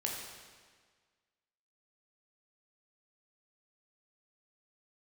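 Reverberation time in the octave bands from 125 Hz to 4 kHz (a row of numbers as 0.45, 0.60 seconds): 1.6, 1.6, 1.6, 1.6, 1.6, 1.4 seconds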